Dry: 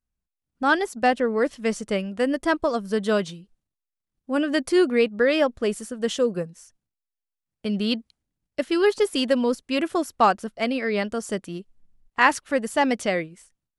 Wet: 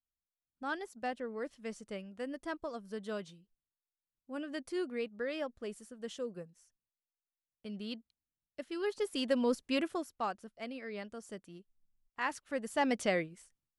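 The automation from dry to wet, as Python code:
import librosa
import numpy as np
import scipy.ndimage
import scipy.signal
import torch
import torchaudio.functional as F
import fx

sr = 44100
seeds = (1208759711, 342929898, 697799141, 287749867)

y = fx.gain(x, sr, db=fx.line((8.72, -17.5), (9.66, -5.5), (10.18, -18.0), (12.21, -18.0), (13.03, -7.0)))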